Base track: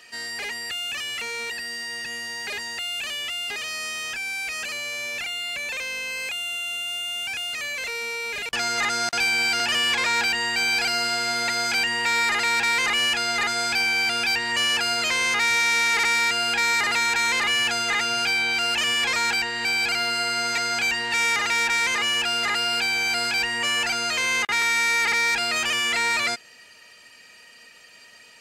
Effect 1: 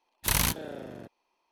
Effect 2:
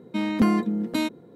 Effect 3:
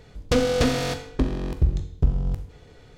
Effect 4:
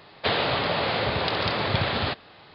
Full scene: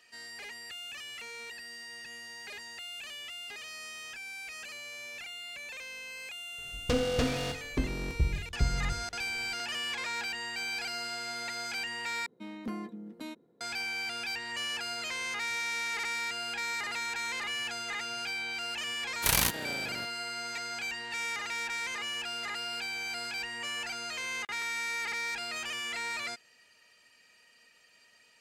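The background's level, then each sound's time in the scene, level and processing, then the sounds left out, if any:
base track -13 dB
6.58 add 3 -8 dB
12.26 replace with 2 -16 dB + bell 66 Hz -14 dB 1.5 oct
18.98 add 1 -1 dB + spectral whitening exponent 0.6
not used: 4

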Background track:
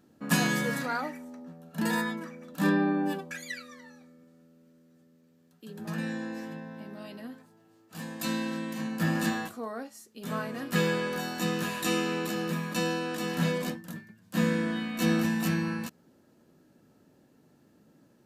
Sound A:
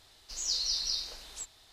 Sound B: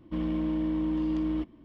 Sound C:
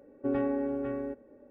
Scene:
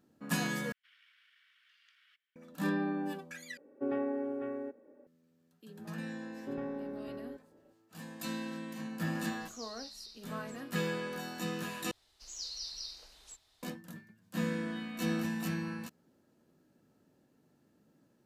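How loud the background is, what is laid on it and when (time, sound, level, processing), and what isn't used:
background track -7.5 dB
0.72 replace with B -12 dB + steep high-pass 1400 Hz 72 dB/oct
3.57 replace with C -3.5 dB + HPF 220 Hz
6.23 add C -10 dB
9.11 add A -17 dB
11.91 replace with A -10.5 dB

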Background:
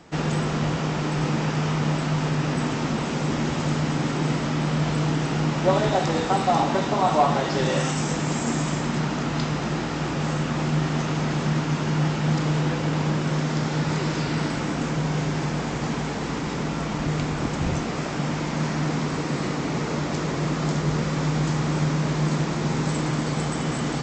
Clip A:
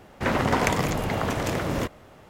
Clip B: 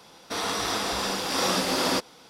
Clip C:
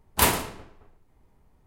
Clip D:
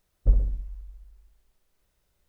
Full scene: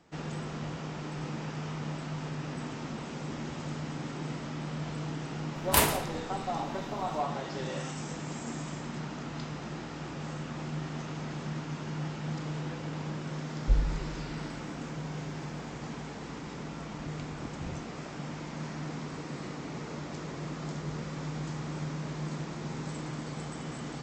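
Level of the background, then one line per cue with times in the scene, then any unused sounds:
background -13 dB
5.55 add C -1 dB + three-band squash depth 40%
13.42 add D -5 dB
not used: A, B

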